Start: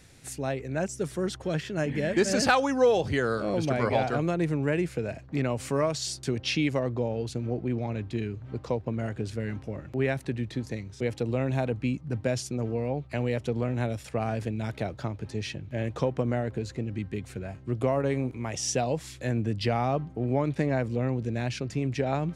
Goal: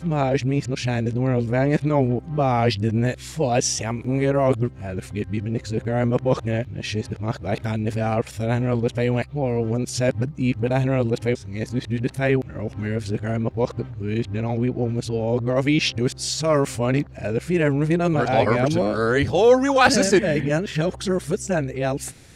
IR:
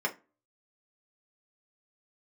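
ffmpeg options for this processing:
-af "areverse,volume=2.24"

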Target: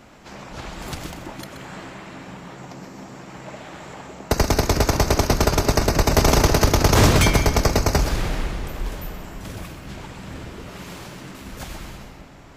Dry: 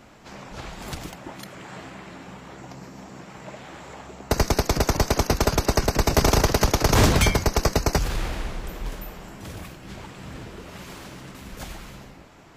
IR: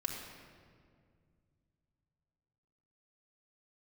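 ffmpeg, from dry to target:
-filter_complex "[0:a]asplit=2[s0][s1];[1:a]atrim=start_sample=2205,adelay=127[s2];[s1][s2]afir=irnorm=-1:irlink=0,volume=0.355[s3];[s0][s3]amix=inputs=2:normalize=0,volume=1.26"

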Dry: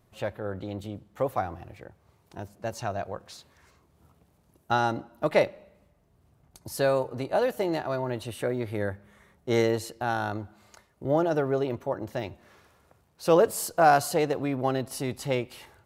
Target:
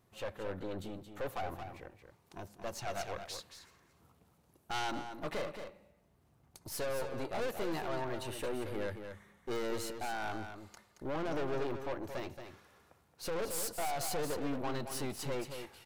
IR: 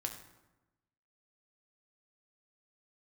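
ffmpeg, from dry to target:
-filter_complex "[0:a]lowshelf=f=120:g=-6.5,bandreject=f=620:w=12,alimiter=limit=0.126:level=0:latency=1:release=44,aeval=exprs='(tanh(50.1*val(0)+0.65)-tanh(0.65))/50.1':c=same,aecho=1:1:224:0.398,asplit=3[s0][s1][s2];[s0]afade=t=out:st=2.87:d=0.02[s3];[s1]adynamicequalizer=threshold=0.00316:dfrequency=1600:dqfactor=0.7:tfrequency=1600:tqfactor=0.7:attack=5:release=100:ratio=0.375:range=3:mode=boostabove:tftype=highshelf,afade=t=in:st=2.87:d=0.02,afade=t=out:st=4.9:d=0.02[s4];[s2]afade=t=in:st=4.9:d=0.02[s5];[s3][s4][s5]amix=inputs=3:normalize=0"

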